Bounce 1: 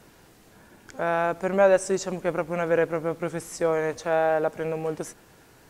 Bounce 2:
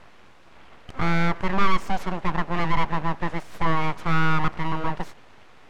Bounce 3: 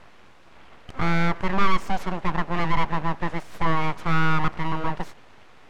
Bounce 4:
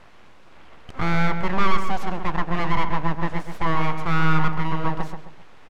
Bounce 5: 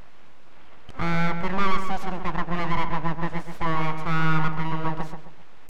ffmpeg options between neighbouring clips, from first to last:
-filter_complex "[0:a]asplit=2[a][b];[b]highpass=f=720:p=1,volume=17dB,asoftclip=type=tanh:threshold=-7.5dB[c];[a][c]amix=inputs=2:normalize=0,lowpass=f=2.4k:p=1,volume=-6dB,aeval=exprs='abs(val(0))':c=same,aemphasis=mode=reproduction:type=75fm"
-af anull
-filter_complex "[0:a]asplit=2[a][b];[b]adelay=132,lowpass=f=1.8k:p=1,volume=-6dB,asplit=2[c][d];[d]adelay=132,lowpass=f=1.8k:p=1,volume=0.37,asplit=2[e][f];[f]adelay=132,lowpass=f=1.8k:p=1,volume=0.37,asplit=2[g][h];[h]adelay=132,lowpass=f=1.8k:p=1,volume=0.37[i];[a][c][e][g][i]amix=inputs=5:normalize=0"
-af "aeval=exprs='val(0)+0.5*0.0447*sgn(val(0))':c=same,volume=-2.5dB"

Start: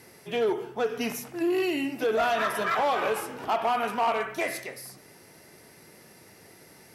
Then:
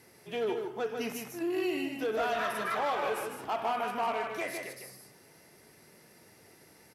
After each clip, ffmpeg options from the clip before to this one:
-af "aecho=1:1:153:0.531,volume=-6.5dB"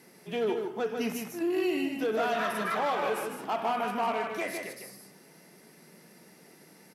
-af "lowshelf=f=130:t=q:w=3:g=-10.5,volume=1.5dB"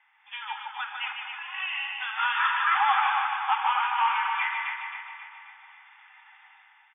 -af "afftfilt=real='re*between(b*sr/4096,760,3600)':imag='im*between(b*sr/4096,760,3600)':win_size=4096:overlap=0.75,dynaudnorm=f=130:g=7:m=10.5dB,aecho=1:1:268|536|804|1072|1340|1608:0.473|0.241|0.123|0.0628|0.032|0.0163,volume=-2.5dB"

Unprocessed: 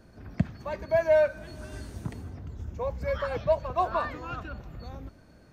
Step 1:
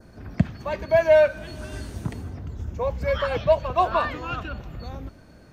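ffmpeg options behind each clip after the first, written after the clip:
-af "adynamicequalizer=threshold=0.00224:dfrequency=3000:dqfactor=2.2:tfrequency=3000:tqfactor=2.2:attack=5:release=100:ratio=0.375:range=3.5:mode=boostabove:tftype=bell,volume=5.5dB"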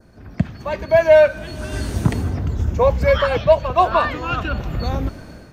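-af "dynaudnorm=f=190:g=5:m=15dB,volume=-1dB"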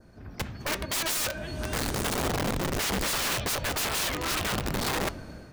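-af "aeval=exprs='(mod(8.91*val(0)+1,2)-1)/8.91':c=same,flanger=delay=5.9:depth=3.8:regen=-89:speed=1.2:shape=sinusoidal"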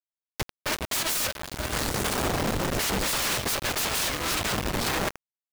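-af "acrusher=bits=4:mix=0:aa=0.000001"

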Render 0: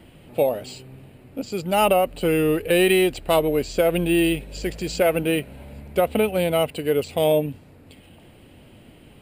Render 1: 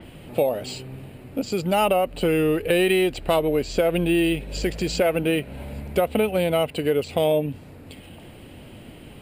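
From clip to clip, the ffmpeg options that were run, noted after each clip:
-af "acompressor=threshold=-28dB:ratio=2,adynamicequalizer=threshold=0.00355:dfrequency=5500:dqfactor=0.7:tfrequency=5500:tqfactor=0.7:attack=5:release=100:ratio=0.375:range=2.5:mode=cutabove:tftype=highshelf,volume=5.5dB"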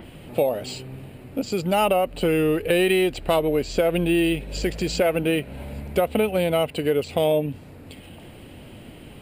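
-af "acompressor=mode=upward:threshold=-40dB:ratio=2.5"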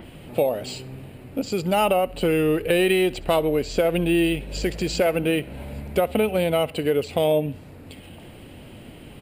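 -af "aecho=1:1:65|130|195:0.0794|0.0357|0.0161"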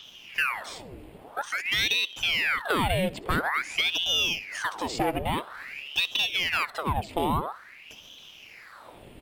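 -af "aeval=exprs='val(0)*sin(2*PI*1700*n/s+1700*0.9/0.49*sin(2*PI*0.49*n/s))':c=same,volume=-3dB"

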